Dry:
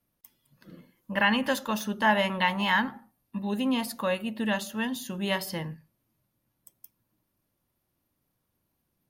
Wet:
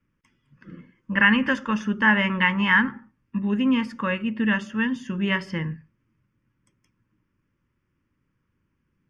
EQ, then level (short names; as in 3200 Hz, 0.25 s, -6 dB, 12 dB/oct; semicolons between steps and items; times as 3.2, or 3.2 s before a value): LPF 4900 Hz 24 dB/oct; fixed phaser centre 1700 Hz, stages 4; +8.0 dB